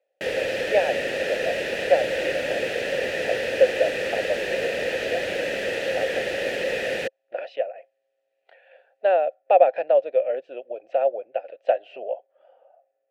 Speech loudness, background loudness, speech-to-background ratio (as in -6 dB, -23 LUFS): -25.5 LUFS, -26.5 LUFS, 1.0 dB